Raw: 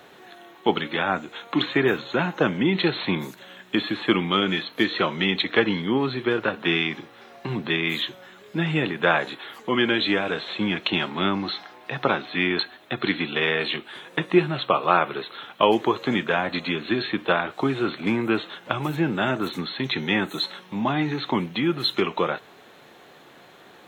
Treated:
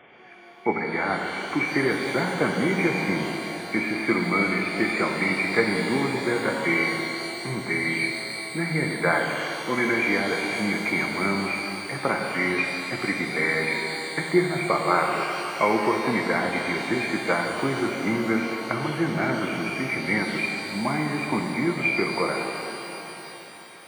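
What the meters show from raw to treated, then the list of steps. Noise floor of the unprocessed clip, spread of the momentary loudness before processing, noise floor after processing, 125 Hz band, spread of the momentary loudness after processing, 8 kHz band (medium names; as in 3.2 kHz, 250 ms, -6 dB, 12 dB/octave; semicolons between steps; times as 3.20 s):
-50 dBFS, 8 LU, -40 dBFS, -1.0 dB, 6 LU, no reading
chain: knee-point frequency compression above 2 kHz 4:1; pitch-shifted reverb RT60 3.4 s, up +12 st, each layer -8 dB, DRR 1.5 dB; trim -3.5 dB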